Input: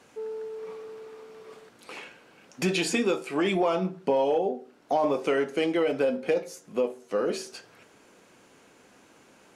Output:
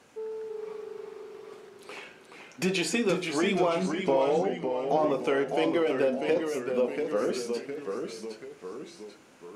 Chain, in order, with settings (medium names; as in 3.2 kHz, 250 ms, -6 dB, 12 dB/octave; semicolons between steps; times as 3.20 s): ever faster or slower copies 314 ms, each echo -1 st, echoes 3, each echo -6 dB; trim -1.5 dB